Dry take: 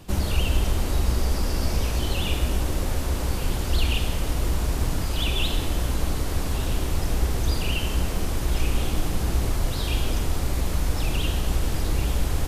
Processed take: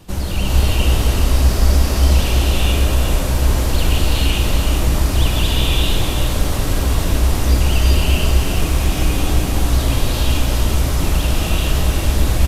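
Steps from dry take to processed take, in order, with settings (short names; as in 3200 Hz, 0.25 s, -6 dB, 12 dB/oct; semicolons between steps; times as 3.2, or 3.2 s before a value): vibrato 6.9 Hz 45 cents; de-hum 77.64 Hz, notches 34; on a send: echo 0.378 s -6.5 dB; on the sum: non-linear reverb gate 0.48 s rising, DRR -4.5 dB; gain +2 dB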